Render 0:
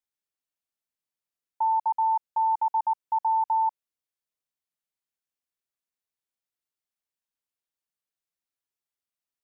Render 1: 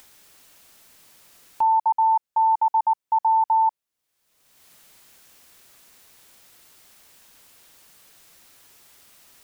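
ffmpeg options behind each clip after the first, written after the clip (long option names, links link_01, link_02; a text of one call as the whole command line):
ffmpeg -i in.wav -af "acompressor=mode=upward:threshold=-32dB:ratio=2.5,volume=5dB" out.wav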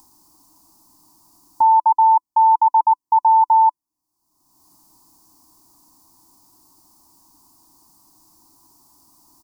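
ffmpeg -i in.wav -af "firequalizer=gain_entry='entry(220,0);entry(310,11);entry(480,-24);entry(700,-3);entry(1000,7);entry(1400,-19);entry(2100,-28);entry(3300,-24);entry(4700,-4)':delay=0.05:min_phase=1,volume=2.5dB" out.wav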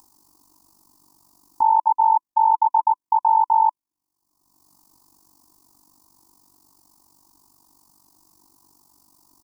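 ffmpeg -i in.wav -af "tremolo=f=48:d=0.824" out.wav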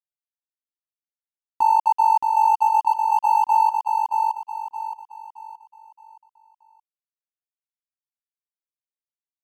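ffmpeg -i in.wav -filter_complex "[0:a]aeval=exprs='sgn(val(0))*max(abs(val(0))-0.0141,0)':channel_layout=same,asplit=2[link_01][link_02];[link_02]aecho=0:1:621|1242|1863|2484|3105:0.631|0.227|0.0818|0.0294|0.0106[link_03];[link_01][link_03]amix=inputs=2:normalize=0" out.wav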